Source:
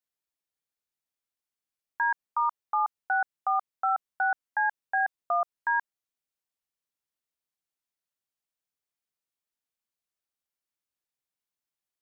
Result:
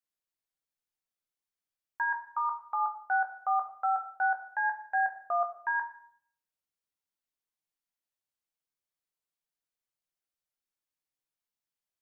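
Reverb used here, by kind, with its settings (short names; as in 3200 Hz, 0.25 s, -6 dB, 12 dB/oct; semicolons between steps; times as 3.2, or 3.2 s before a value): shoebox room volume 110 m³, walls mixed, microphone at 0.52 m; gain -4.5 dB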